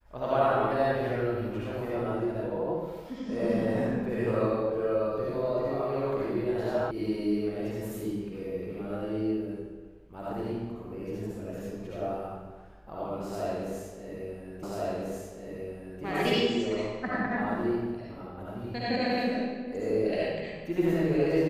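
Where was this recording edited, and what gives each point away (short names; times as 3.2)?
6.91 sound cut off
14.63 repeat of the last 1.39 s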